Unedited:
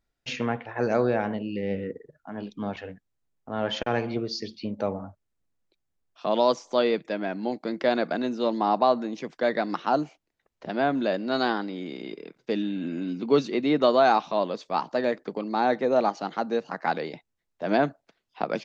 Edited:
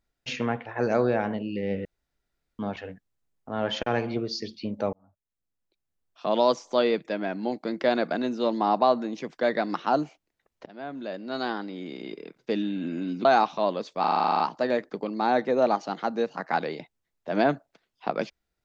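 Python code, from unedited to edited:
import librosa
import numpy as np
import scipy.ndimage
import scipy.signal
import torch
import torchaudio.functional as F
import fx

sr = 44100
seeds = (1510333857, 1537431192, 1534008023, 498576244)

y = fx.edit(x, sr, fx.room_tone_fill(start_s=1.85, length_s=0.74),
    fx.fade_in_span(start_s=4.93, length_s=1.41),
    fx.fade_in_from(start_s=10.66, length_s=1.53, floor_db=-19.0),
    fx.cut(start_s=13.25, length_s=0.74),
    fx.stutter(start_s=14.74, slice_s=0.04, count=11), tone=tone)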